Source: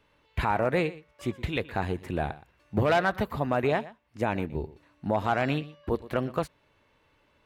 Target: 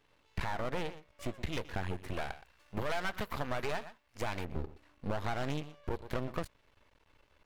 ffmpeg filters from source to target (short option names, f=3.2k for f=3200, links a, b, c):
-filter_complex "[0:a]asettb=1/sr,asplit=3[a][b][c];[a]atrim=end=2.134[d];[b]atrim=start=2.13:end=4.45,asetpts=PTS-STARTPTS,afade=t=in:d=0.004:c=qsin,afade=t=out:st=2.316:d=0.004:c=qsin,tiltshelf=f=640:g=-5[e];[c]atrim=start=4.446[f];[d][e]acrossfade=d=0.004:c1=hsin:c2=qsin[g];[g][f]acrossfade=d=0.004:c1=qsin:c2=hsin,asoftclip=type=tanh:threshold=-18dB,asubboost=boost=3:cutoff=72,acompressor=threshold=-29dB:ratio=6,aeval=exprs='max(val(0),0)':c=same,volume=1dB"